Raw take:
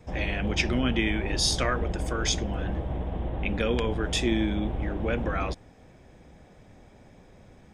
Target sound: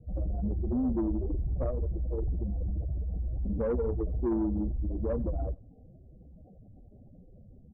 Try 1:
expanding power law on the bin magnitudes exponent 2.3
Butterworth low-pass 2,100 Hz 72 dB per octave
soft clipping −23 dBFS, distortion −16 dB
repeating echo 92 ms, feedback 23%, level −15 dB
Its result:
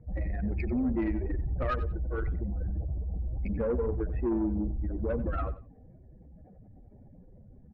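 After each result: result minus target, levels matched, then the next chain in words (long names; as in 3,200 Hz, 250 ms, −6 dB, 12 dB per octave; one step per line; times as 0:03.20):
2,000 Hz band +15.0 dB; echo-to-direct +10 dB
expanding power law on the bin magnitudes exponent 2.3
Butterworth low-pass 760 Hz 72 dB per octave
soft clipping −23 dBFS, distortion −16 dB
repeating echo 92 ms, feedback 23%, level −15 dB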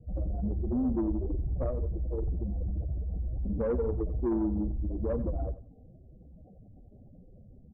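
echo-to-direct +10 dB
expanding power law on the bin magnitudes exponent 2.3
Butterworth low-pass 760 Hz 72 dB per octave
soft clipping −23 dBFS, distortion −16 dB
repeating echo 92 ms, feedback 23%, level −25 dB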